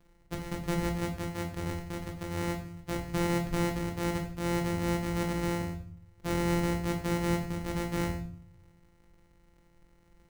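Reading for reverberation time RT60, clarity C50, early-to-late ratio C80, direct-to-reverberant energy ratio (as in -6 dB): 0.50 s, 8.5 dB, 12.0 dB, 2.5 dB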